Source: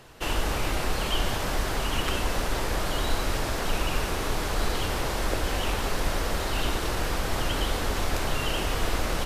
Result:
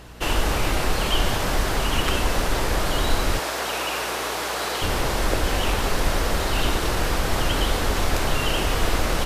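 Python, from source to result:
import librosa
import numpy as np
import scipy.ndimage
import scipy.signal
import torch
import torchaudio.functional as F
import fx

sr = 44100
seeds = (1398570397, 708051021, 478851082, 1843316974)

y = fx.highpass(x, sr, hz=430.0, slope=12, at=(3.39, 4.82))
y = fx.add_hum(y, sr, base_hz=60, snr_db=24)
y = F.gain(torch.from_numpy(y), 5.0).numpy()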